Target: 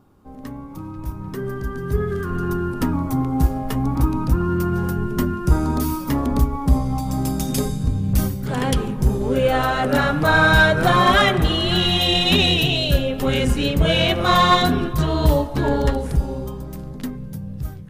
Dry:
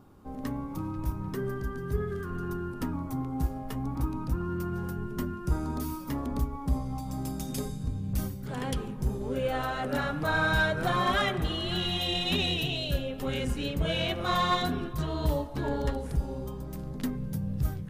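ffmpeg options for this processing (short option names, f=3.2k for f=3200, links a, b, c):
-af "dynaudnorm=f=210:g=17:m=12dB"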